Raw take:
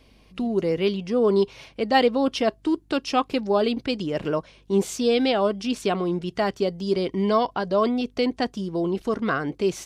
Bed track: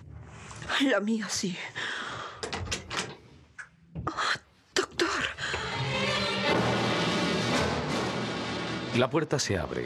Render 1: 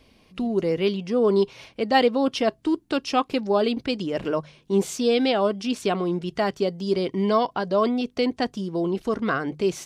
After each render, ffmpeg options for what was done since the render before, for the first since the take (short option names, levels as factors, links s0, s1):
-af "bandreject=f=50:t=h:w=4,bandreject=f=100:t=h:w=4,bandreject=f=150:t=h:w=4"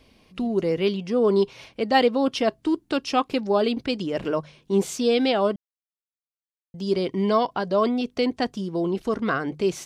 -filter_complex "[0:a]asplit=3[s0][s1][s2];[s0]atrim=end=5.56,asetpts=PTS-STARTPTS,afade=t=out:st=5.556:d=0.004:c=hsin[s3];[s1]atrim=start=5.56:end=6.74,asetpts=PTS-STARTPTS,volume=0[s4];[s2]atrim=start=6.74,asetpts=PTS-STARTPTS,afade=t=in:d=0.004:c=hsin[s5];[s3][s4][s5]concat=n=3:v=0:a=1"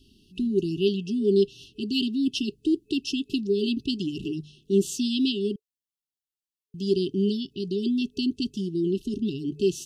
-af "afftfilt=real='re*(1-between(b*sr/4096,420,2600))':imag='im*(1-between(b*sr/4096,420,2600))':win_size=4096:overlap=0.75"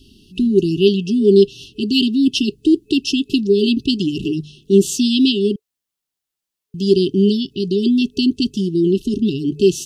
-af "volume=3.16,alimiter=limit=0.794:level=0:latency=1"